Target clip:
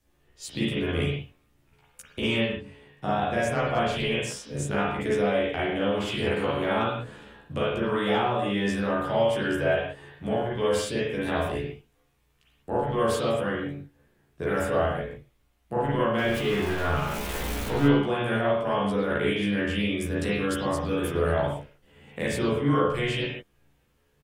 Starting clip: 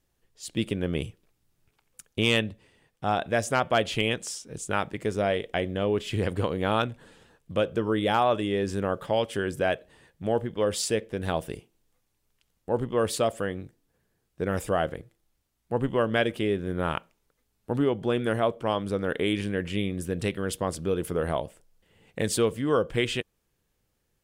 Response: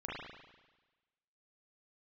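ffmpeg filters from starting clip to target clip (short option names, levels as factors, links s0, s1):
-filter_complex "[0:a]asettb=1/sr,asplit=3[s0][s1][s2];[s0]atrim=end=16.184[s3];[s1]atrim=start=16.18:end=17.87,asetpts=PTS-STARTPTS,afade=t=in:d=0.004:c=qsin,afade=t=out:st=1.686:d=0.004:c=qsin,aeval=exprs='val(0)+0.5*0.0355*sgn(val(0))':c=same[s4];[s2]atrim=start=17.866[s5];[s3][s4]acrossfade=d=0.004:c1=hsin:c2=qsin[s6];[s6][s5]acrossfade=d=0.004:c1=qsin:c2=hsin,asettb=1/sr,asplit=3[s7][s8][s9];[s7]atrim=end=22.284[s10];[s8]atrim=start=22.28:end=22.7,asetpts=PTS-STARTPTS,afade=t=in:d=0.004:c=qsin,afade=t=out:st=0.416:d=0.004:c=qsin,tiltshelf=f=970:g=6.5[s11];[s9]atrim=start=22.696[s12];[s10][s11]acrossfade=d=0.004:c1=hsin:c2=qsin[s13];[s13][s12]acrossfade=d=0.004:c1=qsin:c2=hsin,acrossover=split=150|650[s14][s15][s16];[s14]acompressor=threshold=0.01:ratio=4[s17];[s15]acompressor=threshold=0.0141:ratio=4[s18];[s16]acompressor=threshold=0.0158:ratio=4[s19];[s17][s18][s19]amix=inputs=3:normalize=0,asplit=2[s20][s21];[s21]adelay=14,volume=0.75[s22];[s20][s22]amix=inputs=2:normalize=0[s23];[1:a]atrim=start_sample=2205,afade=t=out:st=0.25:d=0.01,atrim=end_sample=11466[s24];[s23][s24]afir=irnorm=-1:irlink=0,volume=1.78"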